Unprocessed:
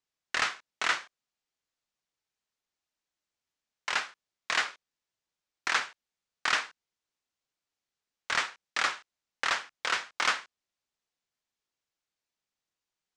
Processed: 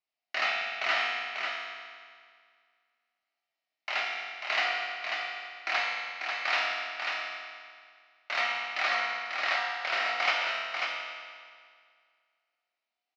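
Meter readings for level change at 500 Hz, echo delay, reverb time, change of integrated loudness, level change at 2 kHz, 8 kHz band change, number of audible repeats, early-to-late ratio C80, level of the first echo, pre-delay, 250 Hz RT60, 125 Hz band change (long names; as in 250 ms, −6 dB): +6.5 dB, 542 ms, 2.0 s, +0.5 dB, +2.5 dB, −10.0 dB, 1, −1.0 dB, −4.5 dB, 4 ms, 2.0 s, can't be measured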